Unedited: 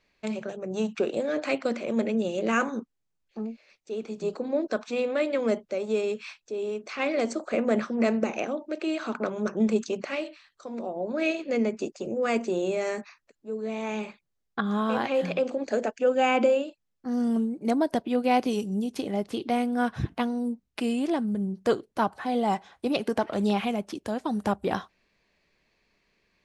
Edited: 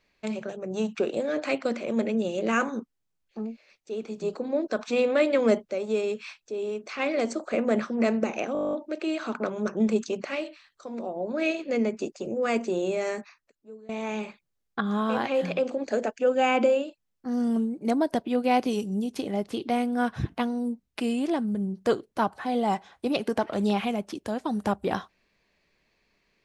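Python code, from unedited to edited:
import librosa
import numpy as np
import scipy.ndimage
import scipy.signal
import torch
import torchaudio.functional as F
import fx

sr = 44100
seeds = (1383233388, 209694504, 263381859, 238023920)

y = fx.edit(x, sr, fx.clip_gain(start_s=4.79, length_s=0.83, db=4.0),
    fx.stutter(start_s=8.53, slice_s=0.02, count=11),
    fx.fade_out_to(start_s=12.9, length_s=0.79, floor_db=-20.5), tone=tone)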